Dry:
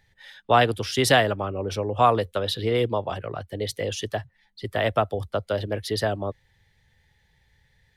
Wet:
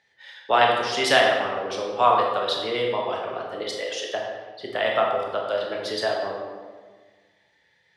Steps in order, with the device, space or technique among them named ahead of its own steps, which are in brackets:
0:03.63–0:04.14: high-pass filter 560 Hz 12 dB per octave
supermarket ceiling speaker (band-pass filter 340–6,300 Hz; convolution reverb RT60 1.5 s, pre-delay 17 ms, DRR −1 dB)
dynamic equaliser 360 Hz, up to −5 dB, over −30 dBFS, Q 0.87

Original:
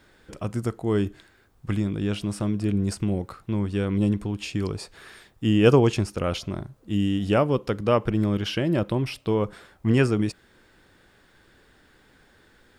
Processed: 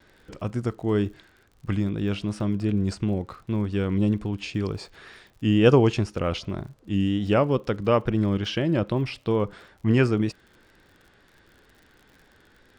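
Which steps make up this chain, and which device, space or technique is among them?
lo-fi chain (low-pass filter 5,800 Hz 12 dB per octave; tape wow and flutter; surface crackle 53 per second −43 dBFS)

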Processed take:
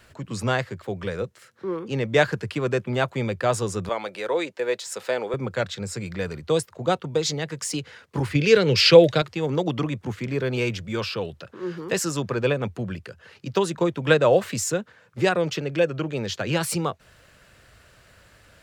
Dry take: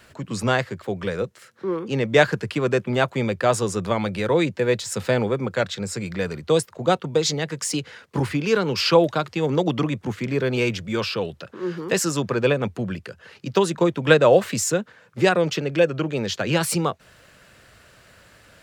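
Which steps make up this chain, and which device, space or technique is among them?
0:03.89–0:05.34: Chebyshev high-pass filter 470 Hz, order 2
0:08.35–0:09.22: octave-band graphic EQ 125/500/1,000/2,000/4,000/8,000 Hz +9/+9/−8/+9/+7/+4 dB
low shelf boost with a cut just above (low-shelf EQ 110 Hz +7 dB; parametric band 200 Hz −2.5 dB 1.2 octaves)
level −3 dB

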